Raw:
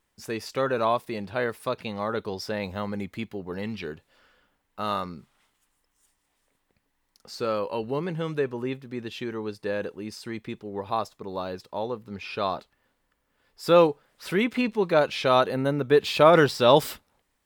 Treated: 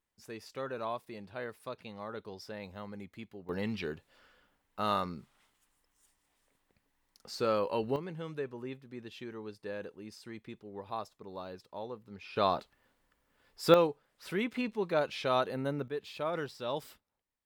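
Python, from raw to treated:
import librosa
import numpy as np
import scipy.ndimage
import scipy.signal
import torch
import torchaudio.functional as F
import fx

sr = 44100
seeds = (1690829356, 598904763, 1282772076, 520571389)

y = fx.gain(x, sr, db=fx.steps((0.0, -13.0), (3.49, -2.5), (7.96, -11.0), (12.36, -1.0), (13.74, -9.0), (15.88, -18.5)))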